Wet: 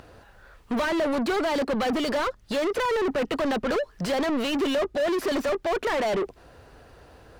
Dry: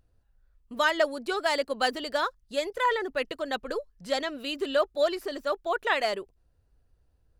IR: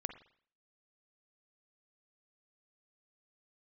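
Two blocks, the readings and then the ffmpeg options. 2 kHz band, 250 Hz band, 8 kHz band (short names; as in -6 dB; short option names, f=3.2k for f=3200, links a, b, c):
-1.0 dB, +11.0 dB, +3.5 dB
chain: -filter_complex "[0:a]acrossover=split=430[a][b];[b]acompressor=threshold=-41dB:ratio=4[c];[a][c]amix=inputs=2:normalize=0,asplit=2[d][e];[e]highpass=f=720:p=1,volume=36dB,asoftclip=type=tanh:threshold=-22.5dB[f];[d][f]amix=inputs=2:normalize=0,lowpass=f=1.9k:p=1,volume=-6dB,volume=4.5dB"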